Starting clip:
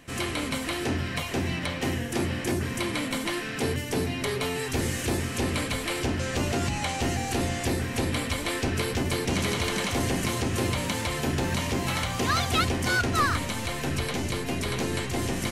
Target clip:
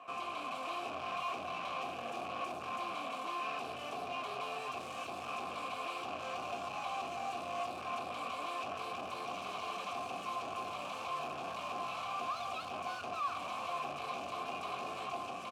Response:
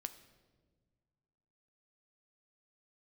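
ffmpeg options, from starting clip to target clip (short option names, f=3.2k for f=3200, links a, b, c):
-filter_complex "[0:a]highpass=f=130:p=1,acrossover=split=260|3000[a][b][c];[b]acompressor=threshold=-41dB:ratio=4[d];[a][d][c]amix=inputs=3:normalize=0,equalizer=f=1.1k:w=3.9:g=14,dynaudnorm=f=110:g=9:m=11.5dB,asoftclip=type=hard:threshold=-34dB,asplit=3[e][f][g];[e]bandpass=f=730:t=q:w=8,volume=0dB[h];[f]bandpass=f=1.09k:t=q:w=8,volume=-6dB[i];[g]bandpass=f=2.44k:t=q:w=8,volume=-9dB[j];[h][i][j]amix=inputs=3:normalize=0,asplit=2[k][l];[l]adelay=21,volume=-12.5dB[m];[k][m]amix=inputs=2:normalize=0,volume=8.5dB"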